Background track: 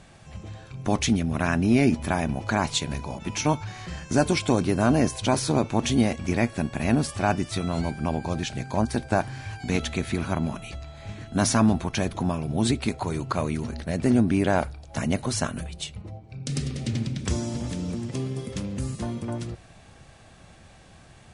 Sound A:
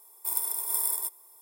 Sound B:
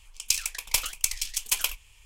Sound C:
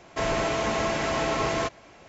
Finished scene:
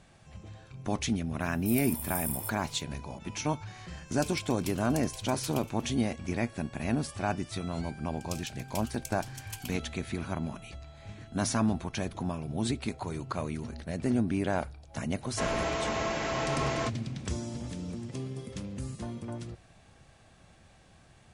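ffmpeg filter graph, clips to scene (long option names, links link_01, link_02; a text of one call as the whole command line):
ffmpeg -i bed.wav -i cue0.wav -i cue1.wav -i cue2.wav -filter_complex "[2:a]asplit=2[link_01][link_02];[0:a]volume=-7.5dB[link_03];[1:a]acrossover=split=5000[link_04][link_05];[link_04]adelay=180[link_06];[link_06][link_05]amix=inputs=2:normalize=0[link_07];[link_01]aecho=1:1:239:0.126[link_08];[link_07]atrim=end=1.41,asetpts=PTS-STARTPTS,volume=-7dB,afade=type=in:duration=0.004:curve=hsin,afade=type=out:start_time=1.406:duration=0.004:curve=hsin,adelay=1410[link_09];[link_08]atrim=end=2.05,asetpts=PTS-STARTPTS,volume=-17.5dB,afade=type=in:duration=0.004:curve=hsin,afade=type=out:start_time=2.046:duration=0.004:curve=hsin,adelay=3920[link_10];[link_02]atrim=end=2.05,asetpts=PTS-STARTPTS,volume=-17.5dB,afade=type=in:duration=0.004:curve=hsin,afade=type=out:start_time=2.046:duration=0.004:curve=hsin,adelay=8010[link_11];[3:a]atrim=end=2.08,asetpts=PTS-STARTPTS,volume=-5dB,afade=type=in:duration=0.004:curve=hsin,afade=type=out:start_time=2.076:duration=0.004:curve=hsin,adelay=15210[link_12];[link_03][link_09][link_10][link_11][link_12]amix=inputs=5:normalize=0" out.wav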